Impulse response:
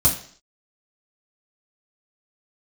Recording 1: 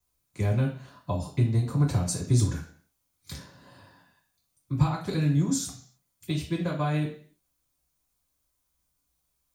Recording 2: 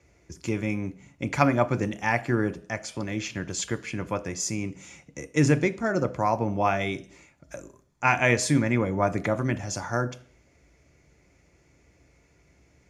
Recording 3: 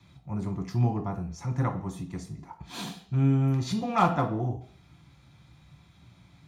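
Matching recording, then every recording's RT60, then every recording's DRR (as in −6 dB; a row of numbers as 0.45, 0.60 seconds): 1; 0.50, 0.50, 0.50 seconds; −5.5, 10.0, 1.0 decibels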